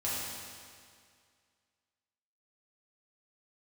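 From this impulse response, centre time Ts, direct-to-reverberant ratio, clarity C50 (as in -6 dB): 0.135 s, -8.5 dB, -2.5 dB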